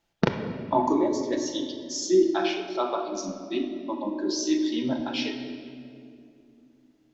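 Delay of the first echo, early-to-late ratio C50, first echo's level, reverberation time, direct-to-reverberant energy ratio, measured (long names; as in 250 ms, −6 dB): no echo audible, 6.5 dB, no echo audible, 2.5 s, 4.0 dB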